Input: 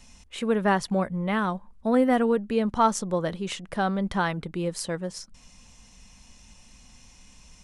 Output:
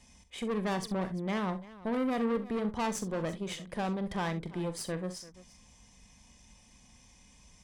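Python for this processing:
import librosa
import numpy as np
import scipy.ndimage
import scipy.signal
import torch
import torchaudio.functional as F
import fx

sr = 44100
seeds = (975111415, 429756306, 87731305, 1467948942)

p1 = fx.low_shelf(x, sr, hz=97.0, db=10.5)
p2 = fx.notch_comb(p1, sr, f0_hz=1400.0)
p3 = fx.tube_stage(p2, sr, drive_db=26.0, bias=0.55)
p4 = p3 + fx.echo_multitap(p3, sr, ms=(43, 65, 341), db=(-13.0, -15.0, -18.0), dry=0)
y = F.gain(torch.from_numpy(p4), -2.5).numpy()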